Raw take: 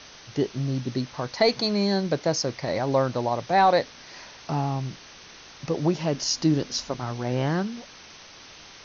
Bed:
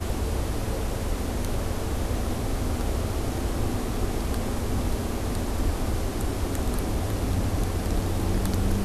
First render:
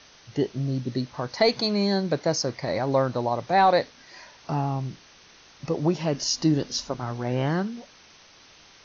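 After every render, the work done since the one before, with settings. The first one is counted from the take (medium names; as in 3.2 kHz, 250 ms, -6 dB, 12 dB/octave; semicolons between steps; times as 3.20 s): noise print and reduce 6 dB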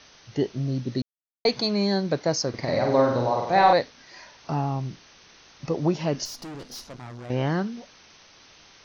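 1.02–1.45 s: mute; 2.49–3.73 s: flutter echo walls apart 8.3 m, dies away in 0.78 s; 6.25–7.30 s: valve stage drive 36 dB, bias 0.8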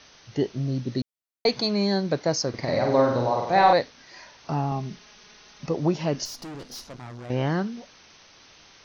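4.71–5.66 s: comb 4.8 ms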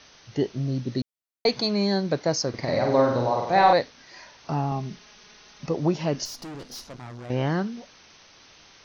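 no audible change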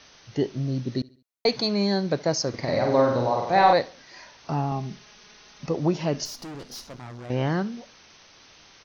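feedback delay 69 ms, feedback 44%, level -23 dB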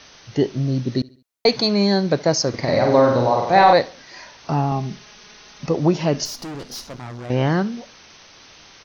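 trim +6 dB; peak limiter -3 dBFS, peak gain reduction 2.5 dB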